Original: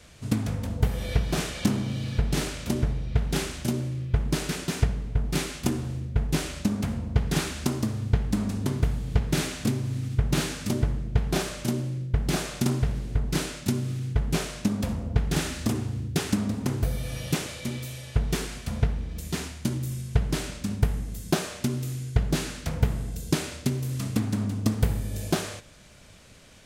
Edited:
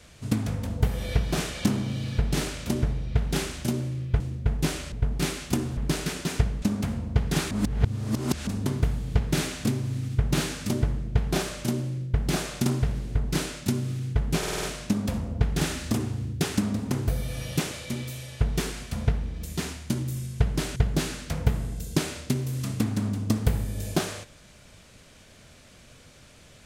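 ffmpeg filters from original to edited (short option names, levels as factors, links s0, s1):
-filter_complex "[0:a]asplit=13[s0][s1][s2][s3][s4][s5][s6][s7][s8][s9][s10][s11][s12];[s0]atrim=end=4.202[s13];[s1]atrim=start=5.898:end=6.622[s14];[s2]atrim=start=5.048:end=5.902[s15];[s3]atrim=start=4.198:end=5.052[s16];[s4]atrim=start=6.618:end=7.512[s17];[s5]atrim=start=7.508:end=8.472,asetpts=PTS-STARTPTS,areverse[s18];[s6]atrim=start=8.468:end=14.432[s19];[s7]atrim=start=14.378:end=14.432[s20];[s8]atrim=start=14.378:end=14.432[s21];[s9]atrim=start=14.378:end=14.432[s22];[s10]atrim=start=14.378:end=14.432[s23];[s11]atrim=start=14.378:end=20.512[s24];[s12]atrim=start=22.118[s25];[s13][s14]acrossfade=d=0.004:c1=hsin:c2=hsin[s26];[s26][s15]acrossfade=d=0.004:c1=hsin:c2=hsin[s27];[s27][s16]acrossfade=d=0.004:c1=hsin:c2=hsin[s28];[s28][s17]acrossfade=d=0.004:c1=hsin:c2=hsin[s29];[s29][s18]acrossfade=d=0.004:c1=hsin:c2=hsin[s30];[s30][s19]acrossfade=d=0.004:c1=hsin:c2=hsin[s31];[s31][s20]acrossfade=d=0.004:c1=hsin:c2=hsin[s32];[s32][s21]acrossfade=d=0.004:c1=hsin:c2=hsin[s33];[s33][s22]acrossfade=d=0.004:c1=hsin:c2=hsin[s34];[s34][s23]acrossfade=d=0.004:c1=hsin:c2=hsin[s35];[s35][s24]acrossfade=d=0.004:c1=hsin:c2=hsin[s36];[s36][s25]acrossfade=d=0.004:c1=hsin:c2=hsin"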